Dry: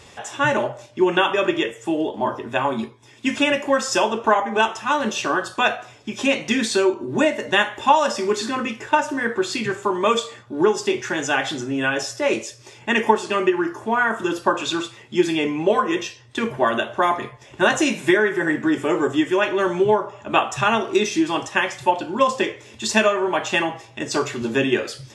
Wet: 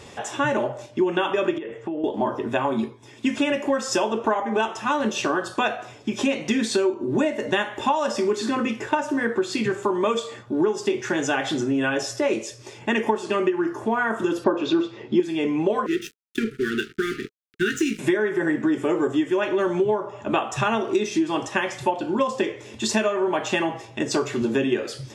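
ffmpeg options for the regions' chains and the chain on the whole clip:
ffmpeg -i in.wav -filter_complex "[0:a]asettb=1/sr,asplit=3[link_01][link_02][link_03];[link_01]atrim=end=1.584[link_04];[link_02]atrim=start=1.58:end=2.04,asetpts=PTS-STARTPTS,afade=type=in:duration=0.004:curve=qsin,afade=type=out:start_time=0.456:duration=0.004:curve=qsin,lowpass=2200,acompressor=threshold=-30dB:ratio=12:attack=3.2:release=140:knee=1:detection=peak[link_05];[link_03]atrim=start=2.036[link_06];[link_04][link_05]acrossfade=duration=0.004:curve1=hsin:curve2=qsin[link_07];[link_07][link_06]acrossfade=duration=0.004:curve1=qsin:curve2=hsin,asettb=1/sr,asplit=3[link_08][link_09][link_10];[link_08]atrim=end=14.444[link_11];[link_09]atrim=start=14.44:end=15.2,asetpts=PTS-STARTPTS,afade=type=in:duration=0.004:curve=qsin,afade=type=out:start_time=0.756:duration=0.004:curve=qsin,lowpass=frequency=5300:width=0.5412,lowpass=frequency=5300:width=1.3066,equalizer=frequency=350:width=0.77:gain=9.5[link_12];[link_10]atrim=start=15.196[link_13];[link_11][link_12]acrossfade=duration=0.004:curve1=hsin:curve2=qsin[link_14];[link_14][link_13]acrossfade=duration=0.004:curve1=qsin:curve2=hsin,asettb=1/sr,asplit=3[link_15][link_16][link_17];[link_15]atrim=end=15.864[link_18];[link_16]atrim=start=15.86:end=17.99,asetpts=PTS-STARTPTS,afade=type=in:duration=0.004:curve=qsin,afade=type=out:start_time=2.126:duration=0.004:curve=qsin,aeval=exprs='sgn(val(0))*max(abs(val(0))-0.0237,0)':channel_layout=same,asuperstop=centerf=760:order=20:qfactor=0.9[link_19];[link_17]atrim=start=17.986[link_20];[link_18][link_19]acrossfade=duration=0.004:curve1=hsin:curve2=qsin[link_21];[link_21][link_20]acrossfade=duration=0.004:curve1=qsin:curve2=hsin,equalizer=frequency=300:width=0.49:gain=6,acompressor=threshold=-21dB:ratio=3" out.wav

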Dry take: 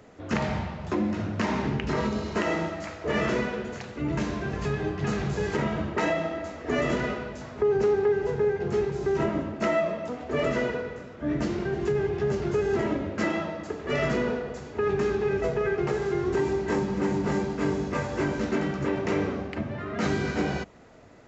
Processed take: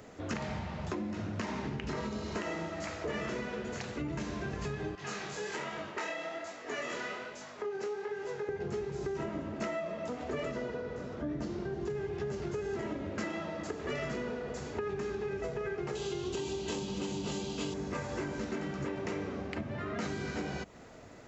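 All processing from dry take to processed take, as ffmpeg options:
ffmpeg -i in.wav -filter_complex "[0:a]asettb=1/sr,asplit=3[link_01][link_02][link_03];[link_01]atrim=end=4.954[link_04];[link_02]atrim=start=4.95:end=8.49,asetpts=PTS-STARTPTS,afade=type=in:duration=0.004:curve=qsin,afade=type=out:start_time=3.536:duration=0.004:curve=qsin,highpass=frequency=870:poles=1,flanger=delay=20:depth=6.8:speed=1.2[link_05];[link_03]atrim=start=8.486[link_06];[link_04][link_05]acrossfade=duration=0.004:curve1=hsin:curve2=qsin[link_07];[link_07][link_06]acrossfade=duration=0.004:curve1=qsin:curve2=hsin,asettb=1/sr,asplit=3[link_08][link_09][link_10];[link_08]atrim=end=10.514[link_11];[link_09]atrim=start=10.51:end=11.9,asetpts=PTS-STARTPTS,afade=type=in:duration=0.004:curve=qsin,afade=type=out:start_time=1.386:duration=0.004:curve=qsin,lowpass=5900,equalizer=frequency=2300:width_type=o:width=1.4:gain=-6.5,acompressor=mode=upward:threshold=-34dB:ratio=2.5:attack=3.2:release=140:knee=2.83:detection=peak[link_12];[link_10]atrim=start=11.896[link_13];[link_11][link_12]acrossfade=duration=0.004:curve1=hsin:curve2=qsin[link_14];[link_14][link_13]acrossfade=duration=0.004:curve1=qsin:curve2=hsin,asettb=1/sr,asplit=3[link_15][link_16][link_17];[link_15]atrim=end=15.954[link_18];[link_16]atrim=start=15.95:end=17.74,asetpts=PTS-STARTPTS,afade=type=in:duration=0.004:curve=qsin,afade=type=out:start_time=1.786:duration=0.004:curve=qsin,highshelf=frequency=2400:width_type=q:width=3:gain=8,bandreject=frequency=5400:width=25[link_19];[link_17]atrim=start=17.736[link_20];[link_18][link_19]acrossfade=duration=0.004:curve1=hsin:curve2=qsin[link_21];[link_21][link_20]acrossfade=duration=0.004:curve1=qsin:curve2=hsin,highshelf=frequency=5100:gain=7,acompressor=threshold=-34dB:ratio=6" out.wav

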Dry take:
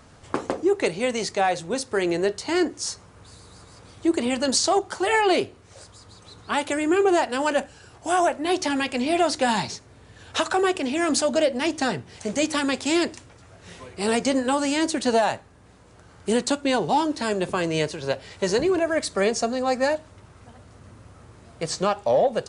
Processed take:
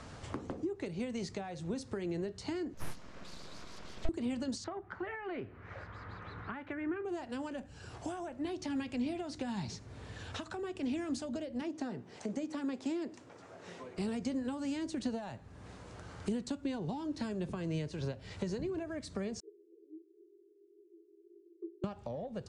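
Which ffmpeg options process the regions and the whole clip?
ffmpeg -i in.wav -filter_complex "[0:a]asettb=1/sr,asplit=3[link_01][link_02][link_03];[link_01]atrim=end=2.744[link_04];[link_02]atrim=start=2.74:end=4.09,asetpts=PTS-STARTPTS,afade=type=in:duration=0.004:curve=qsin,afade=type=out:start_time=1.346:duration=0.004:curve=qsin,lowpass=frequency=6600:width=0.5412,lowpass=frequency=6600:width=1.3066,aeval=exprs='abs(val(0))':channel_layout=same,bandreject=frequency=820:width=15[link_05];[link_03]atrim=start=4.086[link_06];[link_04][link_05]acrossfade=duration=0.004:curve1=hsin:curve2=qsin[link_07];[link_07][link_06]acrossfade=duration=0.004:curve1=qsin:curve2=hsin,asettb=1/sr,asplit=3[link_08][link_09][link_10];[link_08]atrim=end=4.644[link_11];[link_09]atrim=start=4.64:end=7.05,asetpts=PTS-STARTPTS,afade=type=in:duration=0.004:curve=qsin,afade=type=out:start_time=2.406:duration=0.004:curve=qsin,lowpass=frequency=1900:width_type=q:width=2,equalizer=frequency=1400:width_type=o:width=1.4:gain=5[link_12];[link_10]atrim=start=7.046[link_13];[link_11][link_12]acrossfade=duration=0.004:curve1=hsin:curve2=qsin[link_14];[link_14][link_13]acrossfade=duration=0.004:curve1=qsin:curve2=hsin,asettb=1/sr,asplit=3[link_15][link_16][link_17];[link_15]atrim=end=11.614[link_18];[link_16]atrim=start=11.61:end=13.98,asetpts=PTS-STARTPTS,afade=type=in:duration=0.004:curve=qsin,afade=type=out:start_time=2.366:duration=0.004:curve=qsin,highpass=260,lowpass=7400,equalizer=frequency=3600:width_type=o:width=2.6:gain=-8.5[link_19];[link_17]atrim=start=13.976[link_20];[link_18][link_19]acrossfade=duration=0.004:curve1=hsin:curve2=qsin[link_21];[link_21][link_20]acrossfade=duration=0.004:curve1=qsin:curve2=hsin,asettb=1/sr,asplit=3[link_22][link_23][link_24];[link_22]atrim=end=19.404[link_25];[link_23]atrim=start=19.4:end=21.84,asetpts=PTS-STARTPTS,afade=type=in:duration=0.004:curve=qsin,afade=type=out:start_time=2.436:duration=0.004:curve=qsin,asuperpass=centerf=370:order=12:qfactor=4.4,aecho=1:1:6.7:0.97,atrim=end_sample=107604[link_26];[link_24]atrim=start=21.836[link_27];[link_25][link_26]acrossfade=duration=0.004:curve1=hsin:curve2=qsin[link_28];[link_28][link_27]acrossfade=duration=0.004:curve1=qsin:curve2=hsin,acompressor=threshold=-28dB:ratio=5,lowpass=7700,acrossover=split=260[link_29][link_30];[link_30]acompressor=threshold=-50dB:ratio=3[link_31];[link_29][link_31]amix=inputs=2:normalize=0,volume=2dB" out.wav

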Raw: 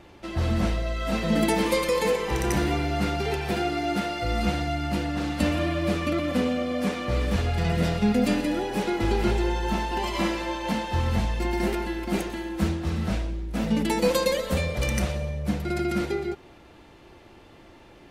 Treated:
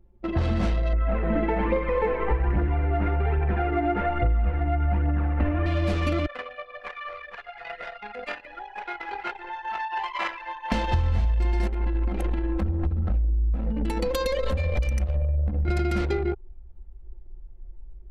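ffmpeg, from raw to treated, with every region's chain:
ffmpeg -i in.wav -filter_complex "[0:a]asettb=1/sr,asplit=3[link_01][link_02][link_03];[link_01]atrim=end=0.934[link_04];[link_02]atrim=start=0.93:end=5.66,asetpts=PTS-STARTPTS,afade=type=in:duration=0.004:curve=qsin,afade=type=out:start_time=4.726:duration=0.004:curve=qsin,lowpass=frequency=2100:width=0.5412,lowpass=frequency=2100:width=1.3066,aphaser=in_gain=1:out_gain=1:delay=3.3:decay=0.45:speed=1.2:type=triangular[link_05];[link_03]atrim=start=5.656[link_06];[link_04][link_05]acrossfade=duration=0.004:curve1=hsin:curve2=qsin[link_07];[link_07][link_06]acrossfade=duration=0.004:curve1=qsin:curve2=hsin,asettb=1/sr,asplit=3[link_08][link_09][link_10];[link_08]atrim=end=6.264[link_11];[link_09]atrim=start=6.26:end=10.72,asetpts=PTS-STARTPTS,afade=type=in:duration=0.004:curve=qsin,afade=type=out:start_time=4.456:duration=0.004:curve=qsin,acrossover=split=2500[link_12][link_13];[link_13]acompressor=threshold=-46dB:ratio=4:attack=1:release=60[link_14];[link_12][link_14]amix=inputs=2:normalize=0,highpass=1100[link_15];[link_10]atrim=start=10.716[link_16];[link_11][link_15]acrossfade=duration=0.004:curve1=hsin:curve2=qsin[link_17];[link_17][link_16]acrossfade=duration=0.004:curve1=qsin:curve2=hsin,asettb=1/sr,asplit=3[link_18][link_19][link_20];[link_18]atrim=end=11.674[link_21];[link_19]atrim=start=11.67:end=15.68,asetpts=PTS-STARTPTS,afade=type=in:duration=0.004:curve=qsin,afade=type=out:start_time=4.006:duration=0.004:curve=qsin,acompressor=threshold=-29dB:ratio=8:attack=3.2:release=140:knee=1:detection=peak,aecho=1:1:3.8:0.37,atrim=end_sample=176841[link_22];[link_20]atrim=start=15.676[link_23];[link_21][link_22]acrossfade=duration=0.004:curve1=hsin:curve2=qsin[link_24];[link_24][link_23]acrossfade=duration=0.004:curve1=qsin:curve2=hsin,anlmdn=10,asubboost=boost=7:cutoff=65,acompressor=threshold=-29dB:ratio=6,volume=8dB" out.wav

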